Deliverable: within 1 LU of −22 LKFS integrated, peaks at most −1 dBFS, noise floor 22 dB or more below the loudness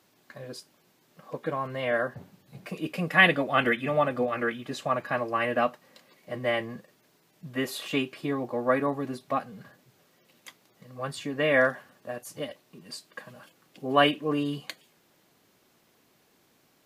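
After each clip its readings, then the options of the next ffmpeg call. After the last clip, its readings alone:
integrated loudness −27.5 LKFS; sample peak −5.0 dBFS; target loudness −22.0 LKFS
→ -af "volume=5.5dB,alimiter=limit=-1dB:level=0:latency=1"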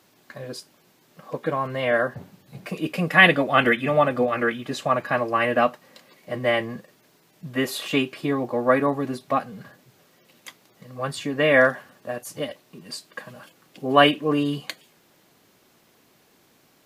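integrated loudness −22.0 LKFS; sample peak −1.0 dBFS; background noise floor −60 dBFS

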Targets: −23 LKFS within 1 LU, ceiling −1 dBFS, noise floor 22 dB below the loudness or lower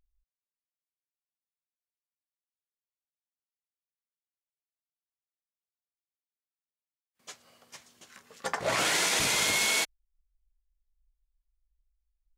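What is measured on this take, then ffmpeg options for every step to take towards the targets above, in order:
integrated loudness −26.0 LKFS; sample peak −15.0 dBFS; target loudness −23.0 LKFS
→ -af "volume=3dB"

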